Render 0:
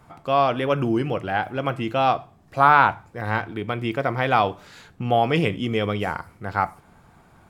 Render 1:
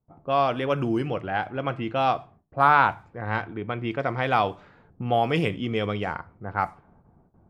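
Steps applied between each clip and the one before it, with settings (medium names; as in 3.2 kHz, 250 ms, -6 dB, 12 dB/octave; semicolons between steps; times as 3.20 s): gate with hold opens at -43 dBFS; level-controlled noise filter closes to 500 Hz, open at -17 dBFS; trim -3 dB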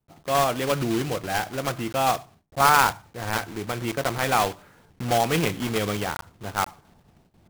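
block-companded coder 3-bit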